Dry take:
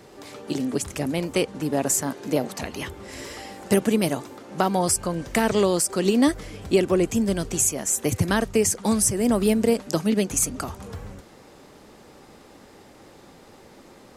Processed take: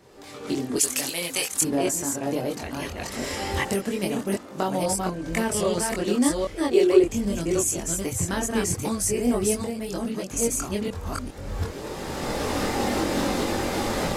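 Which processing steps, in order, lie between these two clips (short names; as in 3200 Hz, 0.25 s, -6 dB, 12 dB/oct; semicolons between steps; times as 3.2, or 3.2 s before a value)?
reverse delay 0.403 s, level -1.5 dB; recorder AGC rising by 17 dB/s; 0.76–1.62 tilt +4.5 dB/oct; 9.55–10.27 compressor 5:1, threshold -19 dBFS, peak gain reduction 7 dB; chorus voices 4, 0.2 Hz, delay 23 ms, depth 2 ms; 6.55–7.04 resonant low shelf 290 Hz -7.5 dB, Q 3; gain -2.5 dB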